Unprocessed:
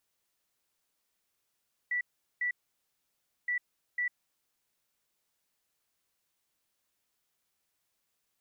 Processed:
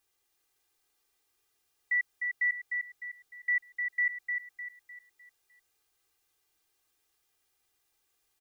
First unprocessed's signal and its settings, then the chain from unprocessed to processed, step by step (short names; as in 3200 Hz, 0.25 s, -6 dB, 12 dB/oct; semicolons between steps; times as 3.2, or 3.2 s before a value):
beep pattern sine 1960 Hz, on 0.10 s, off 0.40 s, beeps 2, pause 0.97 s, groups 2, -28 dBFS
comb 2.5 ms, depth 81%; on a send: feedback echo 0.303 s, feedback 40%, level -5 dB